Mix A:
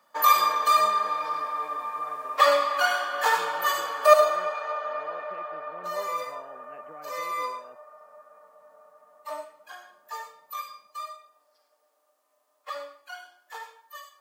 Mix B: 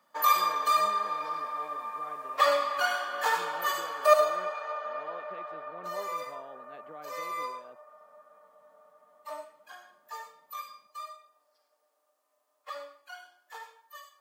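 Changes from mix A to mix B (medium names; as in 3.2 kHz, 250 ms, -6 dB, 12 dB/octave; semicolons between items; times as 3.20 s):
speech: remove brick-wall FIR low-pass 3.1 kHz; background -4.5 dB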